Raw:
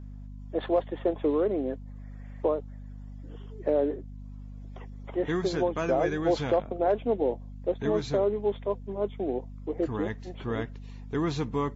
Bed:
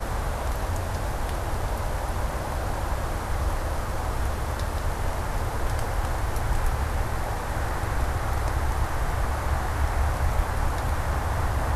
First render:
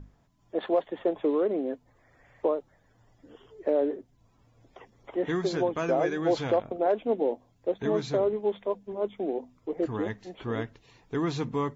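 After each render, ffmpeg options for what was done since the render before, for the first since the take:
-af "bandreject=f=50:t=h:w=6,bandreject=f=100:t=h:w=6,bandreject=f=150:t=h:w=6,bandreject=f=200:t=h:w=6,bandreject=f=250:t=h:w=6"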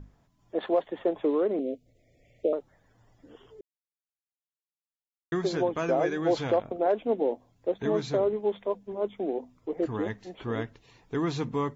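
-filter_complex "[0:a]asettb=1/sr,asplit=3[s0][s1][s2];[s0]atrim=end=1.594[s3];[s1]atrim=start=1.59:end=2.53,asetpts=PTS-STARTPTS,afade=t=in:d=0.004:c=qsin,afade=t=out:st=0.936:d=0.004:c=qsin,asuperstop=centerf=1200:order=12:qfactor=0.82[s4];[s2]atrim=start=2.526[s5];[s3][s4]acrossfade=d=0.004:c1=hsin:c2=qsin[s6];[s6][s5]acrossfade=d=0.004:c1=qsin:c2=hsin,asplit=3[s7][s8][s9];[s7]atrim=end=3.61,asetpts=PTS-STARTPTS,afade=t=out:st=3.606:d=0.004:c=hsin[s10];[s8]atrim=start=3.61:end=5.32,asetpts=PTS-STARTPTS,volume=0[s11];[s9]atrim=start=5.32,asetpts=PTS-STARTPTS,afade=t=in:d=0.004:c=hsin[s12];[s10][s11][s12]concat=n=3:v=0:a=1"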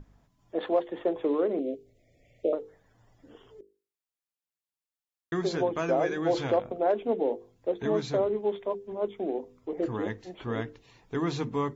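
-af "bandreject=f=50:t=h:w=6,bandreject=f=100:t=h:w=6,bandreject=f=150:t=h:w=6,bandreject=f=200:t=h:w=6,bandreject=f=250:t=h:w=6,bandreject=f=300:t=h:w=6,bandreject=f=350:t=h:w=6,bandreject=f=400:t=h:w=6,bandreject=f=450:t=h:w=6,bandreject=f=500:t=h:w=6"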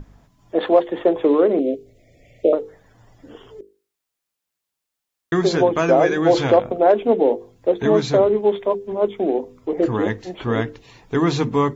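-af "volume=3.55"

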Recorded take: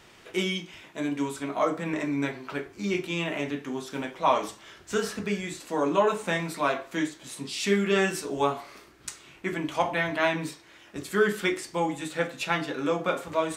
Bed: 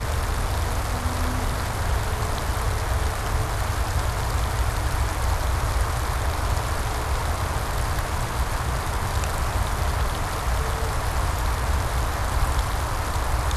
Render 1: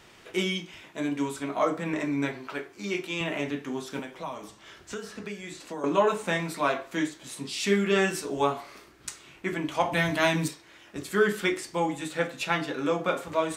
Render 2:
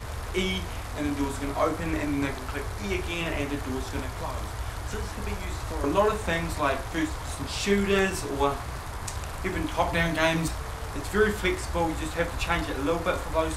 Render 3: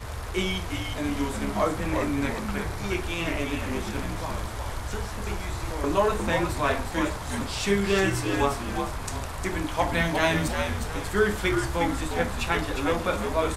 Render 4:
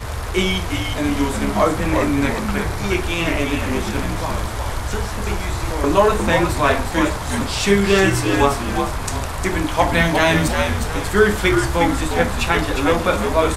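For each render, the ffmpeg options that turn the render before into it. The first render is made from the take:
-filter_complex "[0:a]asettb=1/sr,asplit=3[s0][s1][s2];[s0]atrim=end=2.474[s3];[s1]atrim=start=2.47:end=3.21,asetpts=PTS-STARTPTS,afade=t=in:d=0.004:c=qsin,afade=t=out:st=0.736:d=0.004:c=qsin,highpass=f=330:p=1[s4];[s2]atrim=start=3.206[s5];[s3][s4]acrossfade=d=0.004:c1=hsin:c2=qsin[s6];[s6][s5]acrossfade=d=0.004:c1=qsin:c2=hsin,asettb=1/sr,asplit=3[s7][s8][s9];[s7]atrim=end=3.994[s10];[s8]atrim=start=3.99:end=5.84,asetpts=PTS-STARTPTS,afade=t=in:d=0.004:c=qsin,afade=t=out:st=1.846:d=0.004:c=qsin,acrossover=split=240|7700[s11][s12][s13];[s11]acompressor=threshold=0.00501:ratio=4[s14];[s12]acompressor=threshold=0.0141:ratio=4[s15];[s13]acompressor=threshold=0.00112:ratio=4[s16];[s14][s15][s16]amix=inputs=3:normalize=0[s17];[s9]atrim=start=5.836[s18];[s10][s17]acrossfade=d=0.004:c1=hsin:c2=qsin[s19];[s19][s18]acrossfade=d=0.004:c1=qsin:c2=hsin,asettb=1/sr,asplit=3[s20][s21][s22];[s20]atrim=end=9.924[s23];[s21]atrim=start=9.92:end=10.48,asetpts=PTS-STARTPTS,afade=t=in:d=0.004:c=qsin,afade=t=out:st=0.556:d=0.004:c=qsin,bass=f=250:g=8,treble=f=4000:g=12[s24];[s22]atrim=start=10.476[s25];[s23][s24]acrossfade=d=0.004:c1=hsin:c2=qsin[s26];[s26][s25]acrossfade=d=0.004:c1=qsin:c2=hsin"
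-filter_complex "[1:a]volume=0.316[s0];[0:a][s0]amix=inputs=2:normalize=0"
-filter_complex "[0:a]asplit=5[s0][s1][s2][s3][s4];[s1]adelay=357,afreqshift=-79,volume=0.531[s5];[s2]adelay=714,afreqshift=-158,volume=0.191[s6];[s3]adelay=1071,afreqshift=-237,volume=0.0692[s7];[s4]adelay=1428,afreqshift=-316,volume=0.0248[s8];[s0][s5][s6][s7][s8]amix=inputs=5:normalize=0"
-af "volume=2.66,alimiter=limit=0.794:level=0:latency=1"

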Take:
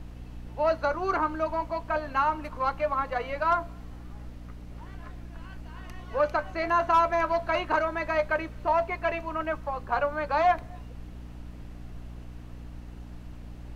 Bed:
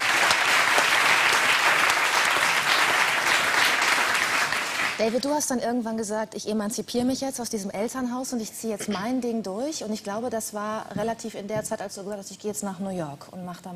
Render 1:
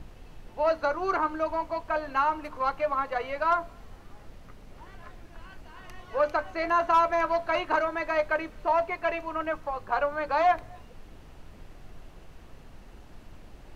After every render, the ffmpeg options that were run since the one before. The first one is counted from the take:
-af "bandreject=f=60:t=h:w=6,bandreject=f=120:t=h:w=6,bandreject=f=180:t=h:w=6,bandreject=f=240:t=h:w=6,bandreject=f=300:t=h:w=6"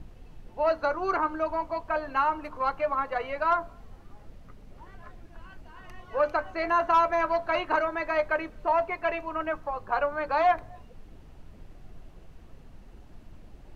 -af "afftdn=nr=6:nf=-49"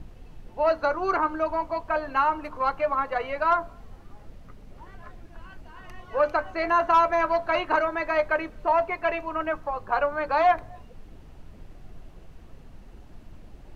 -af "volume=1.33"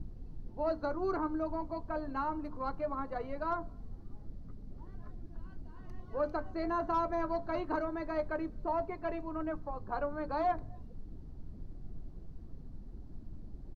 -af "firequalizer=gain_entry='entry(280,0);entry(520,-10);entry(2700,-23);entry(4300,-11);entry(7100,-17)':delay=0.05:min_phase=1"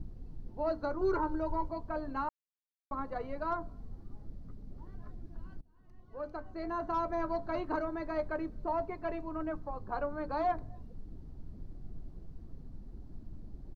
-filter_complex "[0:a]asettb=1/sr,asplit=3[s0][s1][s2];[s0]atrim=end=1.014[s3];[s1]atrim=start=1.01:end=1.69,asetpts=PTS-STARTPTS,afade=t=in:d=0.004:c=qsin,afade=t=out:st=0.676:d=0.004:c=qsin,aecho=1:1:2.1:1,atrim=end_sample=29988[s4];[s2]atrim=start=1.686[s5];[s3][s4]acrossfade=d=0.004:c1=hsin:c2=qsin[s6];[s6][s5]acrossfade=d=0.004:c1=qsin:c2=hsin,asplit=4[s7][s8][s9][s10];[s7]atrim=end=2.29,asetpts=PTS-STARTPTS,afade=t=out:st=2.286:d=0.004:c=hsin[s11];[s8]atrim=start=2.29:end=2.91,asetpts=PTS-STARTPTS,volume=0[s12];[s9]atrim=start=2.91:end=5.61,asetpts=PTS-STARTPTS,afade=t=in:d=0.004:c=hsin,afade=t=out:st=2.696:d=0.004:c=hsin:silence=0.0707946[s13];[s10]atrim=start=5.61,asetpts=PTS-STARTPTS,afade=t=in:d=1.62:silence=0.0707946[s14];[s11][s12][s13][s14]concat=n=4:v=0:a=1"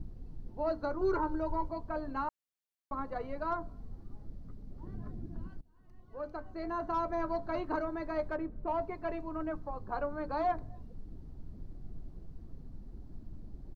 -filter_complex "[0:a]asettb=1/sr,asplit=3[s0][s1][s2];[s0]atrim=end=4.834[s3];[s1]atrim=start=4.83:end=5.48,asetpts=PTS-STARTPTS,afade=t=in:d=0.004:c=qsin,afade=t=out:st=0.646:d=0.004:c=qsin,equalizer=f=190:w=0.44:g=9[s4];[s2]atrim=start=5.476[s5];[s3][s4]acrossfade=d=0.004:c1=hsin:c2=qsin[s6];[s6][s5]acrossfade=d=0.004:c1=qsin:c2=hsin,asettb=1/sr,asplit=3[s7][s8][s9];[s7]atrim=end=8.314[s10];[s8]atrim=start=8.31:end=8.81,asetpts=PTS-STARTPTS,afade=t=in:d=0.004:c=qsin,afade=t=out:st=0.496:d=0.004:c=qsin,adynamicsmooth=sensitivity=4.5:basefreq=2400[s11];[s9]atrim=start=8.806[s12];[s10][s11]acrossfade=d=0.004:c1=hsin:c2=qsin[s13];[s13][s12]acrossfade=d=0.004:c1=qsin:c2=hsin"

